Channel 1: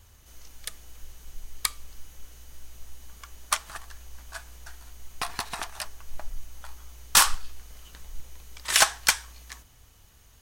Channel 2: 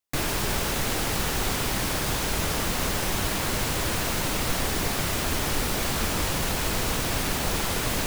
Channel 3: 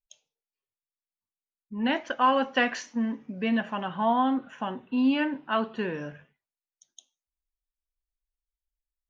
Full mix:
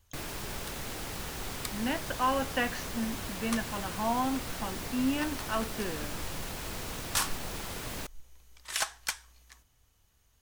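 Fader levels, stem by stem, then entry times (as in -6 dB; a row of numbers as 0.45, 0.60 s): -12.0, -12.0, -6.0 dB; 0.00, 0.00, 0.00 s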